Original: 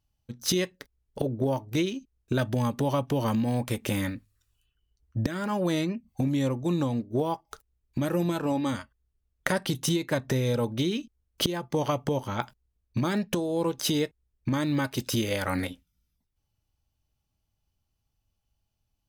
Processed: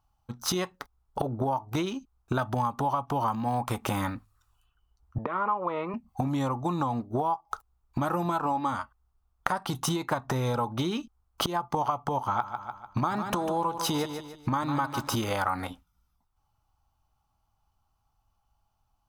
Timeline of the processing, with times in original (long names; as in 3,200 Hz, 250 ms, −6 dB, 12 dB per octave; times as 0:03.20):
0:05.18–0:05.94: loudspeaker in its box 290–2,400 Hz, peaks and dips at 300 Hz −9 dB, 460 Hz +8 dB, 750 Hz −7 dB, 1,100 Hz +4 dB, 1,600 Hz −10 dB, 2,400 Hz +3 dB
0:12.19–0:15.24: repeating echo 148 ms, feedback 38%, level −11 dB
whole clip: flat-topped bell 990 Hz +15.5 dB 1.2 octaves; downward compressor 6 to 1, threshold −25 dBFS; low-shelf EQ 66 Hz +6 dB